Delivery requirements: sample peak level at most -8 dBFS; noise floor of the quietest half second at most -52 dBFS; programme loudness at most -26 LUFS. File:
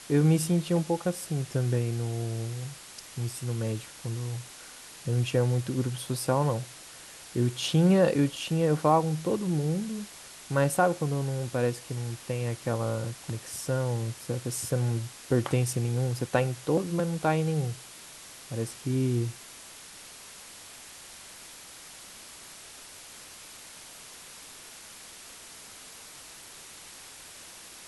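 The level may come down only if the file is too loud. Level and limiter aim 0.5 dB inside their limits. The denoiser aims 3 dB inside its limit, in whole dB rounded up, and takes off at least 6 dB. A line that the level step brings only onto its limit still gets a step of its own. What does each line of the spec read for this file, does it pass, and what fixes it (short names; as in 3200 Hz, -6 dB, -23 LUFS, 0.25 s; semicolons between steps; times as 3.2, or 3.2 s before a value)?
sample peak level -9.5 dBFS: OK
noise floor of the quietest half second -47 dBFS: fail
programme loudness -28.5 LUFS: OK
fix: denoiser 8 dB, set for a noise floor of -47 dBFS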